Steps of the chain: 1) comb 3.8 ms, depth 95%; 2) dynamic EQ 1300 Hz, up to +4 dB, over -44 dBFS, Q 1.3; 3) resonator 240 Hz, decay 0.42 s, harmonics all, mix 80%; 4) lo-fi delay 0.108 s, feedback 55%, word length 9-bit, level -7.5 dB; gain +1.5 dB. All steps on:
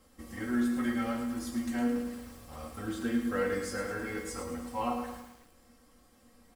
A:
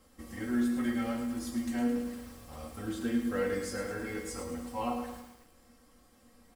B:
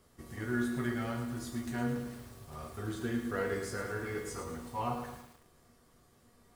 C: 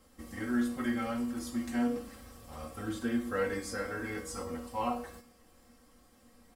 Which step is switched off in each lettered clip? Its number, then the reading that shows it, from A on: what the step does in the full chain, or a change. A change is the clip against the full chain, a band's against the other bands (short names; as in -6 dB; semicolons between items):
2, 2 kHz band -2.5 dB; 1, 125 Hz band +8.5 dB; 4, loudness change -1.5 LU